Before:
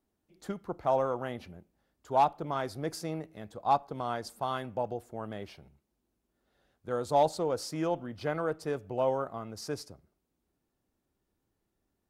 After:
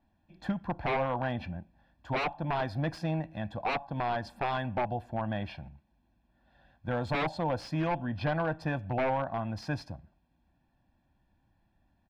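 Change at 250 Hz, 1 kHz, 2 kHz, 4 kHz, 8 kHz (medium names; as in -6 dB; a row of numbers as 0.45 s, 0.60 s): +3.5 dB, -2.0 dB, +8.0 dB, +1.0 dB, under -10 dB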